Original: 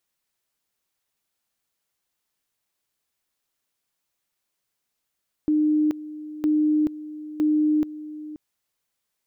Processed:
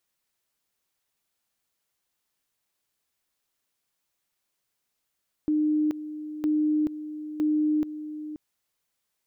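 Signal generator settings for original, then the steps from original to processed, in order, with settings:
two-level tone 304 Hz -17 dBFS, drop 16 dB, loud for 0.43 s, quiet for 0.53 s, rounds 3
limiter -20.5 dBFS

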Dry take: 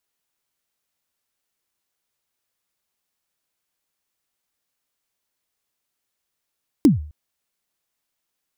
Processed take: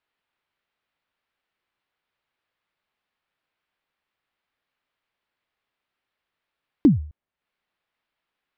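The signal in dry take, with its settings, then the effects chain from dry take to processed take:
kick drum length 0.26 s, from 330 Hz, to 75 Hz, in 0.144 s, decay 0.46 s, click on, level -6 dB
air absorption 420 m; mismatched tape noise reduction encoder only

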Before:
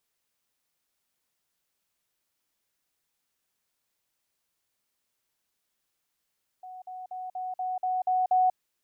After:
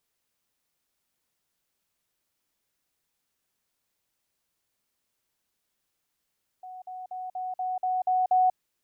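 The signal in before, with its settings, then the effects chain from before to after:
level ladder 740 Hz -40 dBFS, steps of 3 dB, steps 8, 0.19 s 0.05 s
low shelf 480 Hz +3.5 dB

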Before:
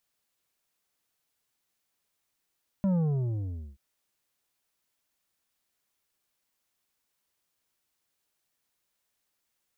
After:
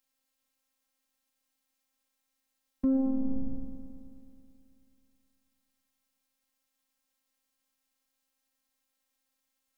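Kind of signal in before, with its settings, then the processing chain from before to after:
sub drop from 200 Hz, over 0.93 s, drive 8 dB, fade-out 0.84 s, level -23.5 dB
bell 110 Hz +11.5 dB 1.4 oct; multi-head echo 0.108 s, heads first and second, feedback 65%, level -15.5 dB; robotiser 265 Hz

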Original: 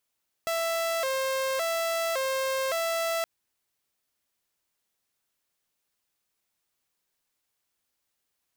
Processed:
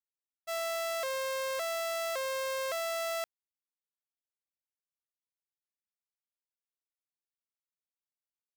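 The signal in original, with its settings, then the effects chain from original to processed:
siren hi-lo 531–663 Hz 0.89/s saw -23.5 dBFS 2.77 s
expander -23 dBFS

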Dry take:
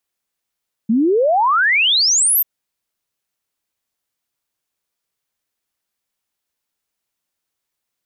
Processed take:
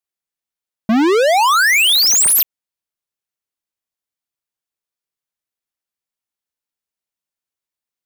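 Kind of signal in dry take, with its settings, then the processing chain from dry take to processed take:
log sweep 210 Hz -> 14000 Hz 1.54 s -11.5 dBFS
sample leveller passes 5

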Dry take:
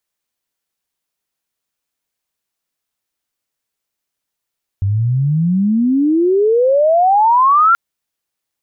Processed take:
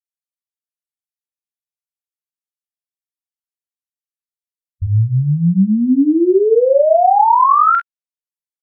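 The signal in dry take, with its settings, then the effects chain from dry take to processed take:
chirp logarithmic 95 Hz -> 1400 Hz -12.5 dBFS -> -7 dBFS 2.93 s
per-bin expansion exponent 1.5; on a send: early reflections 36 ms -9 dB, 47 ms -4.5 dB, 63 ms -16.5 dB; on the sum: treble ducked by the level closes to 1600 Hz, closed at -7 dBFS

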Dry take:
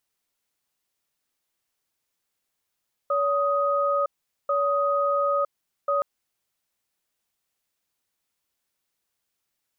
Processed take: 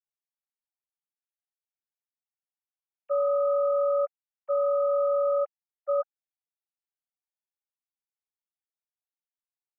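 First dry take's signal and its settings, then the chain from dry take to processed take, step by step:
cadence 568 Hz, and 1250 Hz, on 0.96 s, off 0.43 s, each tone -23 dBFS 2.92 s
sine-wave speech; LPF 1100 Hz 6 dB/oct

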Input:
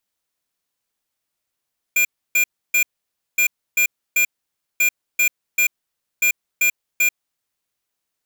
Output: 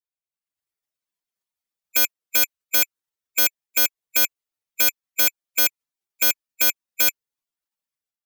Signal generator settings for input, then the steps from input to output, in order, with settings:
beep pattern square 2400 Hz, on 0.09 s, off 0.30 s, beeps 3, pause 0.55 s, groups 4, -16 dBFS
spectral gate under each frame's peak -15 dB weak; AGC

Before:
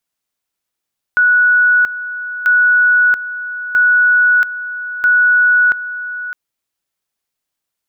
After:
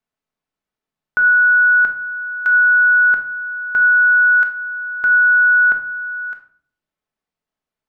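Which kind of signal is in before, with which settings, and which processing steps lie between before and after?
two-level tone 1470 Hz -7.5 dBFS, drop 13.5 dB, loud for 0.68 s, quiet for 0.61 s, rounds 4
LPF 1300 Hz 6 dB/oct; shoebox room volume 650 m³, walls furnished, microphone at 1.5 m

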